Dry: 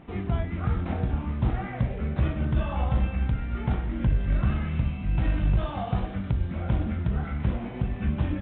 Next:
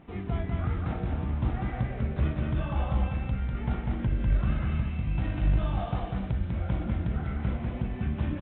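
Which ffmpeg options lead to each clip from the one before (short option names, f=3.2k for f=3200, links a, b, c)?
-af "aecho=1:1:197:0.668,volume=-4dB"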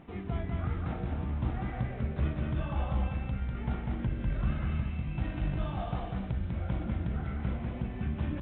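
-af "bandreject=f=50:t=h:w=6,bandreject=f=100:t=h:w=6,areverse,acompressor=mode=upward:threshold=-31dB:ratio=2.5,areverse,volume=-3dB"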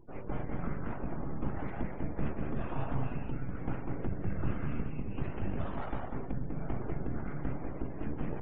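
-af "adynamicsmooth=sensitivity=8:basefreq=2.9k,aeval=exprs='abs(val(0))':c=same,afftdn=nr=28:nf=-53"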